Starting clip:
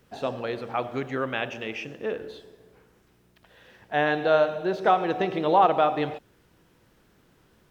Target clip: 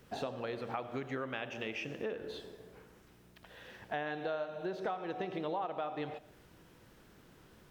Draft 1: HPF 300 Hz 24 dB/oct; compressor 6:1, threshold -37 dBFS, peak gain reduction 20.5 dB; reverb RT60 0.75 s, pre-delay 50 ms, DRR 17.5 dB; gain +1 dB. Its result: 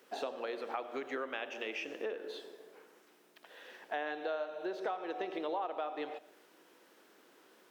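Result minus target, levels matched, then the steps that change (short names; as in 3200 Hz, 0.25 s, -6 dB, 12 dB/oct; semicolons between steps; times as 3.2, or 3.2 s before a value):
250 Hz band -2.5 dB
remove: HPF 300 Hz 24 dB/oct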